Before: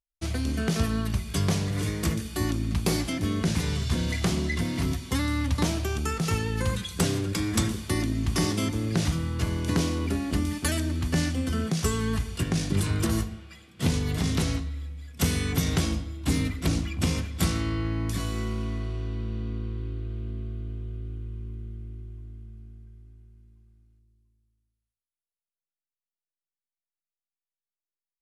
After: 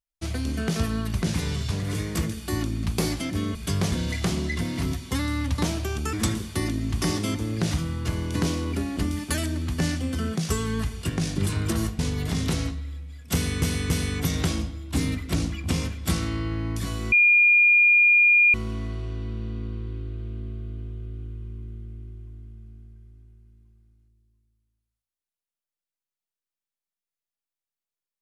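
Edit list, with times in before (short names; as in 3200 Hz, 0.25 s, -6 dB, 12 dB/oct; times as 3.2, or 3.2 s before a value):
1.22–1.59 swap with 3.43–3.92
6.13–7.47 cut
13.33–13.88 cut
15.23–15.51 loop, 3 plays
18.45 add tone 2420 Hz -13.5 dBFS 1.42 s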